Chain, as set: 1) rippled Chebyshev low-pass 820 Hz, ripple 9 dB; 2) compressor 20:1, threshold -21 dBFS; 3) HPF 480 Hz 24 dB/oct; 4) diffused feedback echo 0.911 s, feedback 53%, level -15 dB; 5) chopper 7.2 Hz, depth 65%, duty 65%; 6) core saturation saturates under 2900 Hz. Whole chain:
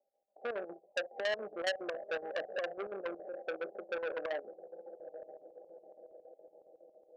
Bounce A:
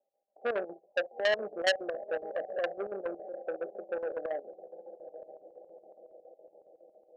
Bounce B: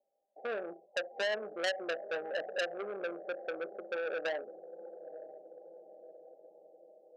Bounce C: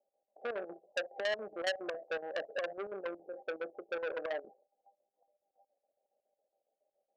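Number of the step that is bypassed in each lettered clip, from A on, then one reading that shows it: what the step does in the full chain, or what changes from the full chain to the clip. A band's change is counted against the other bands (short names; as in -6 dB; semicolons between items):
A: 2, mean gain reduction 1.5 dB; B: 5, loudness change +2.0 LU; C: 4, momentary loudness spread change -13 LU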